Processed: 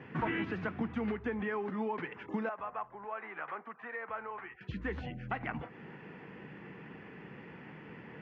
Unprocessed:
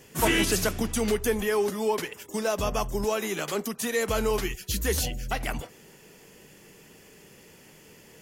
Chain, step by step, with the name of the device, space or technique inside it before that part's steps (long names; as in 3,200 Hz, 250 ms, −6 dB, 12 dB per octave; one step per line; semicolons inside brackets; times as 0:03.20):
bass amplifier (downward compressor 3 to 1, threshold −40 dBFS, peak gain reduction 15.5 dB; loudspeaker in its box 77–2,100 Hz, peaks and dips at 89 Hz −8 dB, 410 Hz −6 dB, 590 Hz −8 dB)
0:02.49–0:04.61: three-way crossover with the lows and the highs turned down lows −21 dB, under 560 Hz, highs −22 dB, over 2,300 Hz
level +7 dB